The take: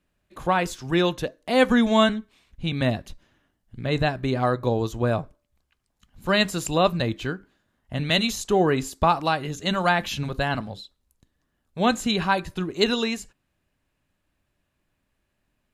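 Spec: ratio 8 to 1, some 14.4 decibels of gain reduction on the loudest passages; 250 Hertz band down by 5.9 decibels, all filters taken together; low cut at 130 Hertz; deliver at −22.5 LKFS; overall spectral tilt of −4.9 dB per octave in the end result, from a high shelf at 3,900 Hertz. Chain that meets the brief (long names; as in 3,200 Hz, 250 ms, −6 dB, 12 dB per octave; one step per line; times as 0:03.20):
high-pass filter 130 Hz
parametric band 250 Hz −7 dB
high-shelf EQ 3,900 Hz −8.5 dB
downward compressor 8 to 1, threshold −30 dBFS
level +13.5 dB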